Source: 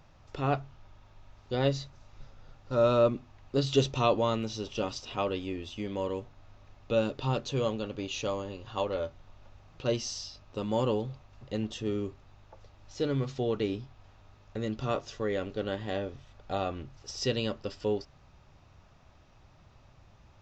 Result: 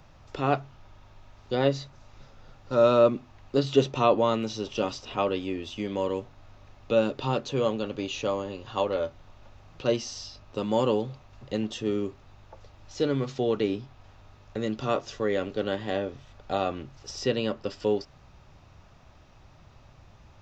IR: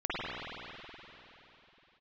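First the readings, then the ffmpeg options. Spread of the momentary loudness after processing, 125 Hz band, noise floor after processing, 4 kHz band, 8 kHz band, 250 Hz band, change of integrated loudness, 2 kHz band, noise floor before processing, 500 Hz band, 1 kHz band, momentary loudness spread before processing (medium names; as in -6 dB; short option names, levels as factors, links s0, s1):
13 LU, -0.5 dB, -54 dBFS, +1.5 dB, no reading, +4.0 dB, +4.0 dB, +3.5 dB, -58 dBFS, +4.5 dB, +4.5 dB, 13 LU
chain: -filter_complex "[0:a]acrossover=split=140|2600[s0][s1][s2];[s0]acompressor=threshold=0.00282:ratio=6[s3];[s2]alimiter=level_in=3.16:limit=0.0631:level=0:latency=1:release=476,volume=0.316[s4];[s3][s1][s4]amix=inputs=3:normalize=0,volume=1.68"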